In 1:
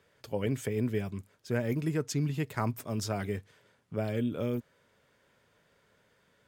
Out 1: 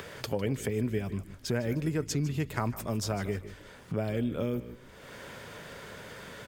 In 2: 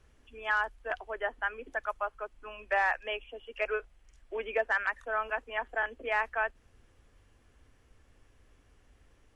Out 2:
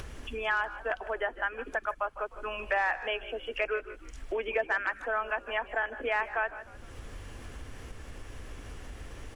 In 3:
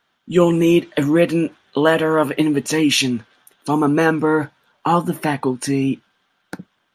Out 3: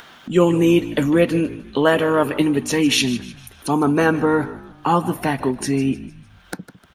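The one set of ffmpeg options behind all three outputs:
ffmpeg -i in.wav -filter_complex "[0:a]asplit=2[link_01][link_02];[link_02]aecho=0:1:155:0.112[link_03];[link_01][link_03]amix=inputs=2:normalize=0,acompressor=mode=upward:threshold=-24dB:ratio=2.5,asplit=2[link_04][link_05];[link_05]asplit=4[link_06][link_07][link_08][link_09];[link_06]adelay=152,afreqshift=-56,volume=-17.5dB[link_10];[link_07]adelay=304,afreqshift=-112,volume=-23.9dB[link_11];[link_08]adelay=456,afreqshift=-168,volume=-30.3dB[link_12];[link_09]adelay=608,afreqshift=-224,volume=-36.6dB[link_13];[link_10][link_11][link_12][link_13]amix=inputs=4:normalize=0[link_14];[link_04][link_14]amix=inputs=2:normalize=0,volume=-1dB" out.wav

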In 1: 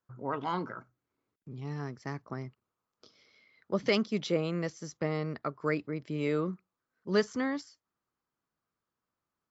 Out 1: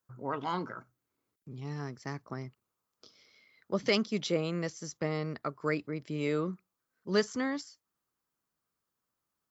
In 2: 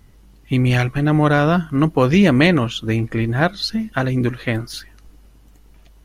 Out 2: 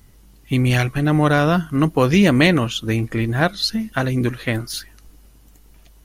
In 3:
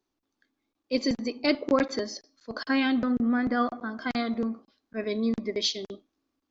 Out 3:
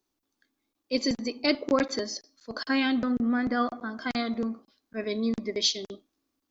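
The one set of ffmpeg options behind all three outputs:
ffmpeg -i in.wav -af "highshelf=frequency=5600:gain=9.5,volume=-1dB" out.wav

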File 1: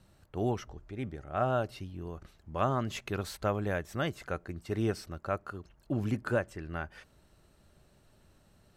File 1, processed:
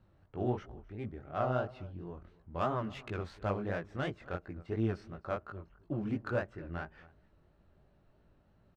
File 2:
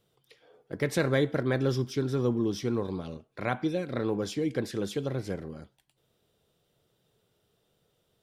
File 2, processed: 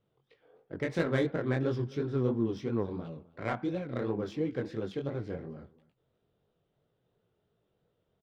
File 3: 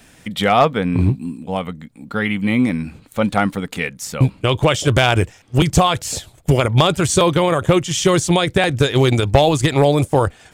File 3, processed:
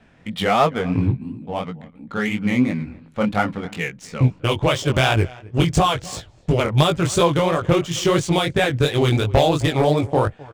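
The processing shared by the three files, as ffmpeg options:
ffmpeg -i in.wav -af "aecho=1:1:260:0.0841,adynamicsmooth=sensitivity=3:basefreq=2400,flanger=delay=17.5:depth=6.7:speed=2.9" out.wav

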